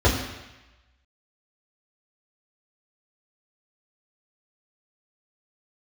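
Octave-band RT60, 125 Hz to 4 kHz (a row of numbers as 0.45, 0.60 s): 0.95, 0.95, 0.95, 1.1, 1.2, 1.1 s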